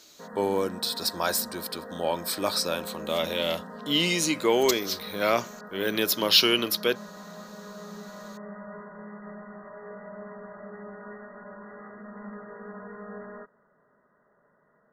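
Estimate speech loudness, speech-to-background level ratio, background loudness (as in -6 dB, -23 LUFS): -26.0 LUFS, 16.0 dB, -42.0 LUFS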